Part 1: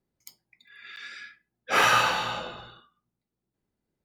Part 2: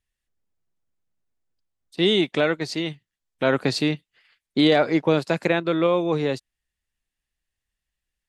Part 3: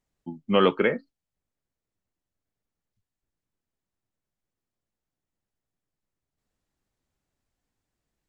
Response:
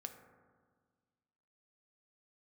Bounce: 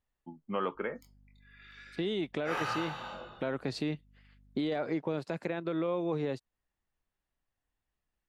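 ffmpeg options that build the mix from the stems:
-filter_complex "[0:a]flanger=delay=20:depth=4.6:speed=0.78,aeval=exprs='val(0)+0.00158*(sin(2*PI*50*n/s)+sin(2*PI*2*50*n/s)/2+sin(2*PI*3*50*n/s)/3+sin(2*PI*4*50*n/s)/4+sin(2*PI*5*50*n/s)/5)':c=same,adelay=750,volume=0.631[s0];[1:a]alimiter=limit=0.188:level=0:latency=1:release=66,volume=0.708[s1];[2:a]equalizer=f=1100:t=o:w=1.8:g=9.5,volume=0.266[s2];[s0][s1][s2]amix=inputs=3:normalize=0,highshelf=f=2500:g=-9,acompressor=threshold=0.0126:ratio=1.5"

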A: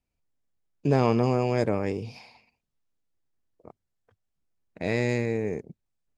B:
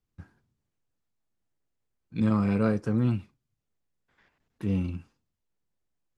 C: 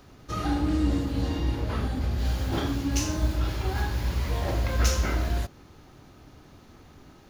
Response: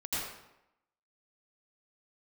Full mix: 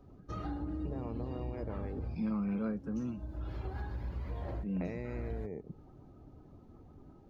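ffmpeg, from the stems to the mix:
-filter_complex "[0:a]acompressor=threshold=0.0398:ratio=6,volume=0.668[s0];[1:a]lowshelf=f=120:t=q:w=3:g=-11.5,volume=0.211,asplit=2[s1][s2];[2:a]volume=0.422[s3];[s2]apad=whole_len=321677[s4];[s3][s4]sidechaincompress=threshold=0.00178:ratio=5:attack=8.8:release=298[s5];[s0][s5]amix=inputs=2:normalize=0,tiltshelf=f=1500:g=4,acompressor=threshold=0.0126:ratio=3,volume=1[s6];[s1][s6]amix=inputs=2:normalize=0,afftdn=nr=14:nf=-59"

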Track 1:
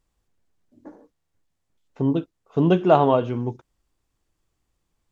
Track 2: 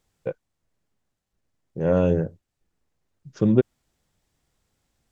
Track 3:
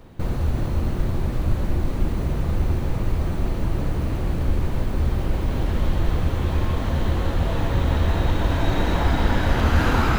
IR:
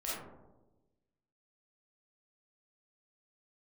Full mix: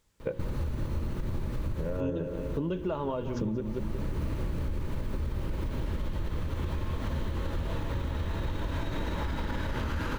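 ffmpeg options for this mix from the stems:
-filter_complex "[0:a]alimiter=limit=0.376:level=0:latency=1,volume=0.562,asplit=3[s0][s1][s2];[s1]volume=0.15[s3];[1:a]bandreject=f=60:t=h:w=6,bandreject=f=120:t=h:w=6,bandreject=f=180:t=h:w=6,bandreject=f=240:t=h:w=6,bandreject=f=300:t=h:w=6,bandreject=f=360:t=h:w=6,bandreject=f=420:t=h:w=6,bandreject=f=480:t=h:w=6,bandreject=f=540:t=h:w=6,volume=1.12,asplit=2[s4][s5];[s5]volume=0.2[s6];[2:a]adelay=200,volume=1.06,asplit=2[s7][s8];[s8]volume=0.0794[s9];[s2]apad=whole_len=458160[s10];[s7][s10]sidechaincompress=threshold=0.00708:ratio=8:attack=16:release=570[s11];[s4][s11]amix=inputs=2:normalize=0,alimiter=limit=0.158:level=0:latency=1:release=116,volume=1[s12];[s3][s6][s9]amix=inputs=3:normalize=0,aecho=0:1:182|364|546|728|910|1092|1274|1456|1638:1|0.59|0.348|0.205|0.121|0.0715|0.0422|0.0249|0.0147[s13];[s0][s12][s13]amix=inputs=3:normalize=0,asuperstop=centerf=730:order=4:qfactor=5.4,acompressor=threshold=0.0398:ratio=6"

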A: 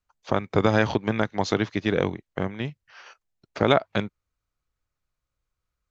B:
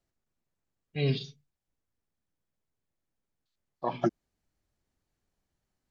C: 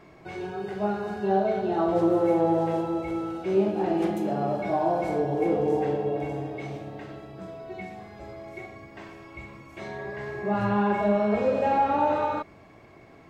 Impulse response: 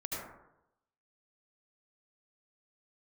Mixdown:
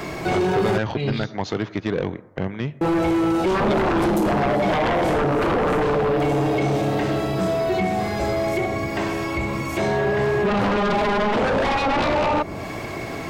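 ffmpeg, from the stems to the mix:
-filter_complex "[0:a]bass=f=250:g=0,treble=f=4000:g=-8,dynaudnorm=f=130:g=3:m=2.99,volume=0.708,asplit=2[s0][s1];[s1]volume=0.0631[s2];[1:a]volume=1.33,asplit=2[s3][s4];[s4]volume=0.188[s5];[2:a]aeval=exprs='0.266*sin(PI/2*5.01*val(0)/0.266)':c=same,highshelf=f=3800:g=10.5,acrossover=split=180|1100[s6][s7][s8];[s6]acompressor=threshold=0.0447:ratio=4[s9];[s7]acompressor=threshold=0.112:ratio=4[s10];[s8]acompressor=threshold=0.0224:ratio=4[s11];[s9][s10][s11]amix=inputs=3:normalize=0,volume=1.41,asplit=3[s12][s13][s14];[s12]atrim=end=0.78,asetpts=PTS-STARTPTS,afade=t=out:st=0.776:d=0.004:c=hsin[s15];[s13]atrim=start=0.78:end=2.81,asetpts=PTS-STARTPTS,volume=0[s16];[s14]atrim=start=2.81,asetpts=PTS-STARTPTS,afade=t=in:d=0.004:c=hsin[s17];[s15][s16][s17]concat=n=3:v=0:a=1[s18];[3:a]atrim=start_sample=2205[s19];[s2][s5]amix=inputs=2:normalize=0[s20];[s20][s19]afir=irnorm=-1:irlink=0[s21];[s0][s3][s18][s21]amix=inputs=4:normalize=0,asoftclip=type=tanh:threshold=0.178"

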